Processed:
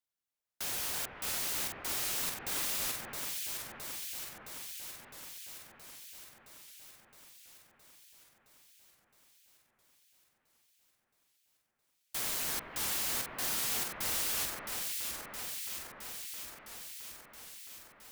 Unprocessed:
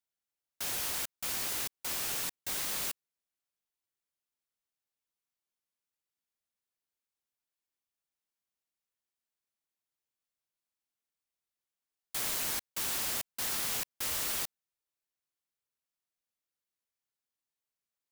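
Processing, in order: echo whose repeats swap between lows and highs 333 ms, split 2.1 kHz, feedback 84%, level -3 dB; warped record 78 rpm, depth 160 cents; trim -1.5 dB

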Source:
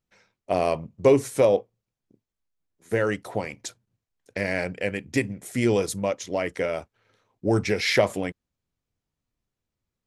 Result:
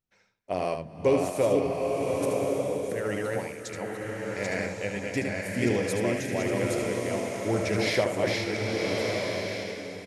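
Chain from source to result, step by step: chunks repeated in reverse 451 ms, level -2.5 dB; 1.59–3.06 s: compressor with a negative ratio -29 dBFS, ratio -1; on a send: delay 76 ms -7 dB; on the sum: swelling reverb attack 1180 ms, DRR 1 dB; trim -6 dB

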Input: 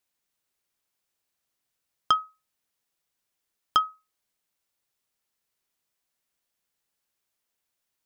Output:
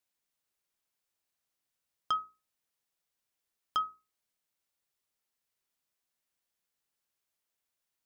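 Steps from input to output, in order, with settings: hum notches 60/120/180/240/300/360/420 Hz; peak limiter -15 dBFS, peak gain reduction 7 dB; trim -4.5 dB

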